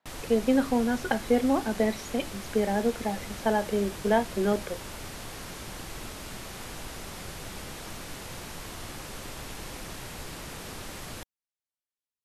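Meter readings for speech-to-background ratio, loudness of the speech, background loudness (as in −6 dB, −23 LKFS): 12.0 dB, −27.5 LKFS, −39.5 LKFS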